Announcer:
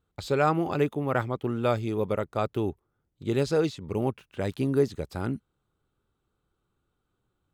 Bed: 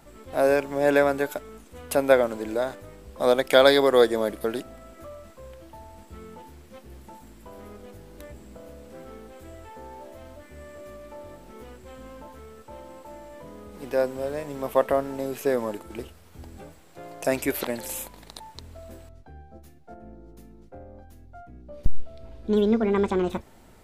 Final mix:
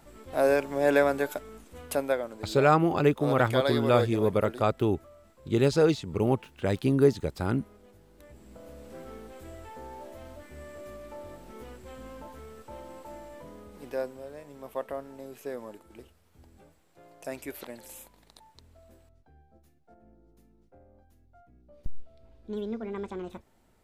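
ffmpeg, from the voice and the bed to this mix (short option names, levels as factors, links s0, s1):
-filter_complex "[0:a]adelay=2250,volume=1.33[s0];[1:a]volume=2.51,afade=t=out:st=1.8:d=0.37:silence=0.354813,afade=t=in:st=8.18:d=0.7:silence=0.298538,afade=t=out:st=13.16:d=1.08:silence=0.251189[s1];[s0][s1]amix=inputs=2:normalize=0"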